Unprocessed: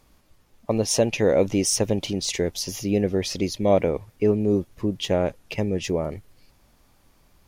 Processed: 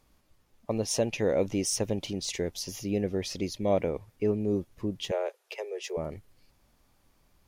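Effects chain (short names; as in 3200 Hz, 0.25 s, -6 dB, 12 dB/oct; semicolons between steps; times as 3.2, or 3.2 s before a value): 5.11–5.97 steep high-pass 370 Hz 96 dB/oct; gain -7 dB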